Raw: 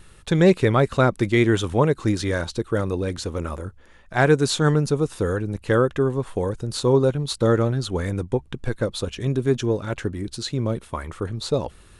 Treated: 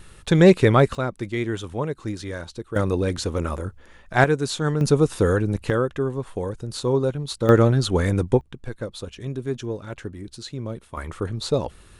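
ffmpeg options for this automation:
-af "asetnsamples=n=441:p=0,asendcmd='0.95 volume volume -8dB;2.76 volume volume 2.5dB;4.24 volume volume -4.5dB;4.81 volume volume 4dB;5.7 volume volume -3.5dB;7.49 volume volume 4.5dB;8.41 volume volume -7dB;10.97 volume volume 0.5dB',volume=1.33"

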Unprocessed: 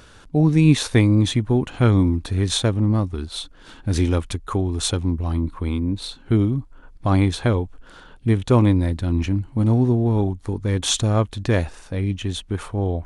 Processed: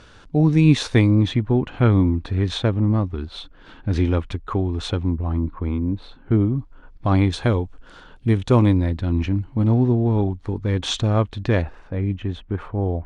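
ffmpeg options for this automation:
-af "asetnsamples=n=441:p=0,asendcmd='1.1 lowpass f 3100;5.17 lowpass f 1800;6.57 lowpass f 4400;7.33 lowpass f 7100;8.77 lowpass f 4000;11.62 lowpass f 1900',lowpass=5900"

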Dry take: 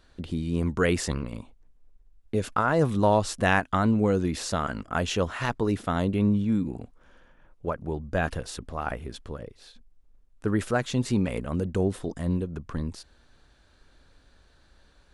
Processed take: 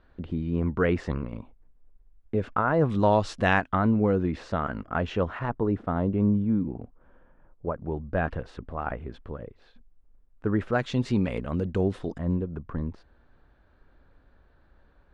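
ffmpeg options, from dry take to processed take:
-af "asetnsamples=n=441:p=0,asendcmd='2.9 lowpass f 4200;3.68 lowpass f 2000;5.39 lowpass f 1200;7.76 lowpass f 1900;10.73 lowpass f 4000;12.18 lowpass f 1600',lowpass=1900"

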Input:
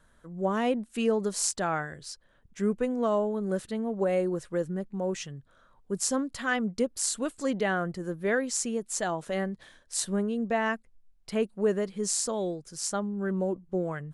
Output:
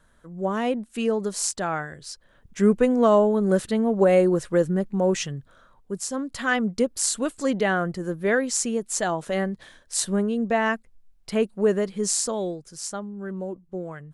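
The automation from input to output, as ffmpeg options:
-af "volume=7.5,afade=t=in:st=2.01:d=0.66:silence=0.446684,afade=t=out:st=5.32:d=0.77:silence=0.237137,afade=t=in:st=6.09:d=0.32:silence=0.375837,afade=t=out:st=12.05:d=1:silence=0.398107"

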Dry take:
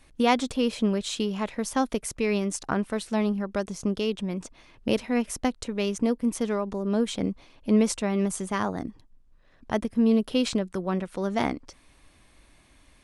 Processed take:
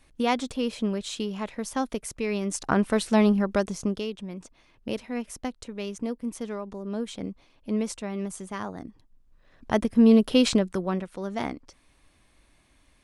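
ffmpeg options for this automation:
-af "volume=6.68,afade=t=in:st=2.38:d=0.52:silence=0.375837,afade=t=out:st=3.44:d=0.67:silence=0.251189,afade=t=in:st=8.88:d=1.14:silence=0.281838,afade=t=out:st=10.56:d=0.55:silence=0.354813"

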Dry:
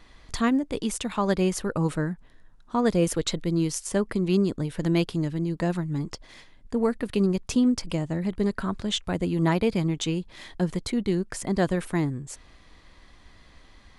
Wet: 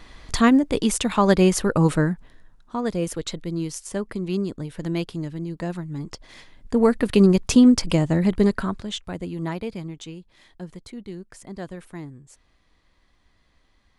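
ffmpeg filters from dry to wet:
-af "volume=7.94,afade=t=out:st=2.01:d=0.78:silence=0.316228,afade=t=in:st=5.96:d=1.13:silence=0.281838,afade=t=out:st=8.35:d=0.5:silence=0.281838,afade=t=out:st=8.85:d=1.31:silence=0.398107"

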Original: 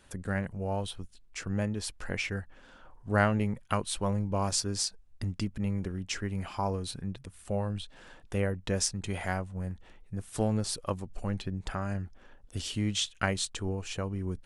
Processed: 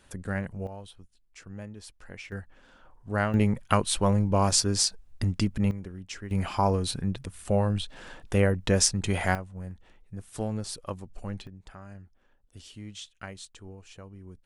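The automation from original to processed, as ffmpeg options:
-af "asetnsamples=n=441:p=0,asendcmd='0.67 volume volume -10dB;2.32 volume volume -2dB;3.34 volume volume 6.5dB;5.71 volume volume -5dB;6.31 volume volume 7dB;9.35 volume volume -3dB;11.47 volume volume -12dB',volume=1.06"

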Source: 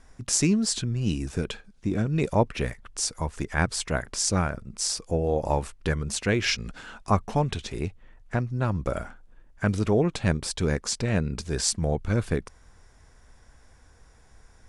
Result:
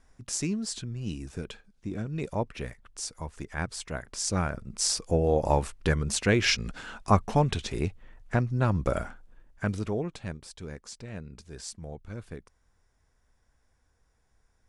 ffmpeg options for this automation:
-af "volume=1.12,afade=t=in:st=4.06:d=0.82:silence=0.354813,afade=t=out:st=9.01:d=0.86:silence=0.375837,afade=t=out:st=9.87:d=0.52:silence=0.421697"

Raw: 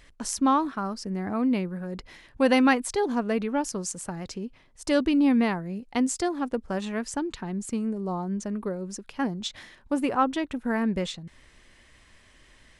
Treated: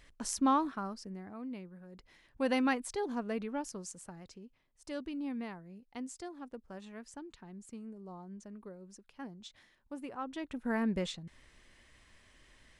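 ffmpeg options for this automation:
-af "volume=4.73,afade=t=out:st=0.61:d=0.69:silence=0.251189,afade=t=in:st=1.92:d=0.58:silence=0.398107,afade=t=out:st=3.42:d=1.04:silence=0.421697,afade=t=in:st=10.23:d=0.51:silence=0.266073"

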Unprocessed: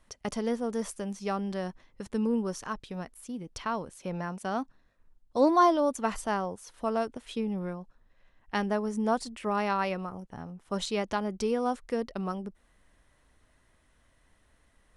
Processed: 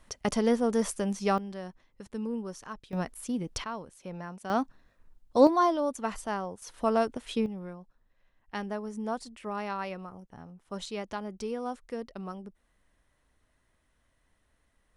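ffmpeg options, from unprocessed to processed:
-af "asetnsamples=n=441:p=0,asendcmd='1.38 volume volume -6dB;2.93 volume volume 6dB;3.64 volume volume -5.5dB;4.5 volume volume 4dB;5.47 volume volume -3dB;6.62 volume volume 3.5dB;7.46 volume volume -6dB',volume=1.78"

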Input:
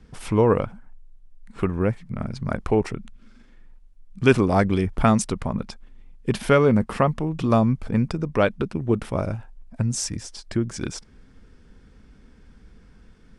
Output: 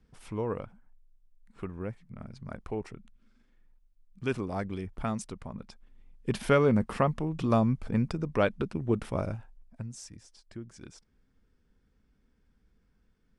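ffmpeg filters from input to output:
-af "volume=0.501,afade=t=in:st=5.59:d=0.84:silence=0.375837,afade=t=out:st=9.21:d=0.72:silence=0.237137"

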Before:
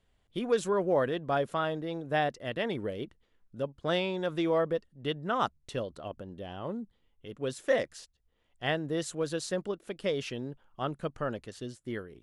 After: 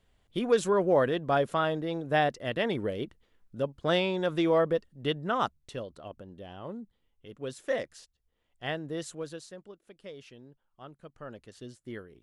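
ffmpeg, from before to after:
-af "volume=4.47,afade=t=out:st=5.09:d=0.67:silence=0.473151,afade=t=out:st=9.07:d=0.46:silence=0.298538,afade=t=in:st=11.09:d=0.62:silence=0.316228"

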